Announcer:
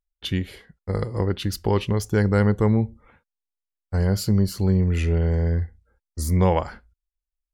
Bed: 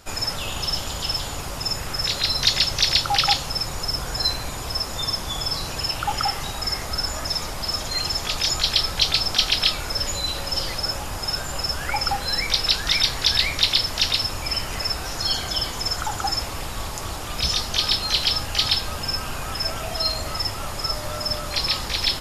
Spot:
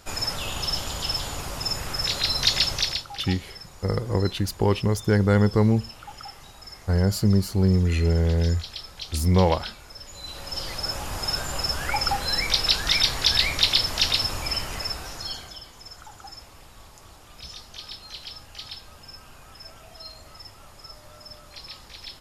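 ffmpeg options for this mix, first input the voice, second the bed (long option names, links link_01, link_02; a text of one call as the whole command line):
ffmpeg -i stem1.wav -i stem2.wav -filter_complex "[0:a]adelay=2950,volume=0dB[link_01];[1:a]volume=14dB,afade=type=out:start_time=2.7:duration=0.36:silence=0.177828,afade=type=in:start_time=10.1:duration=1.1:silence=0.158489,afade=type=out:start_time=14.35:duration=1.26:silence=0.141254[link_02];[link_01][link_02]amix=inputs=2:normalize=0" out.wav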